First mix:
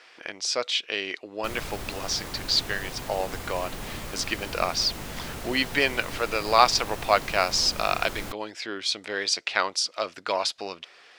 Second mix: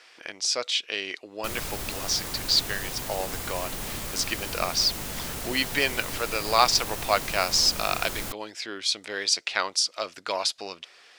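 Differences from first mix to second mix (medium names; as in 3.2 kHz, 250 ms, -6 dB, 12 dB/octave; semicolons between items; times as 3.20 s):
speech -3.0 dB; master: add treble shelf 4.9 kHz +9.5 dB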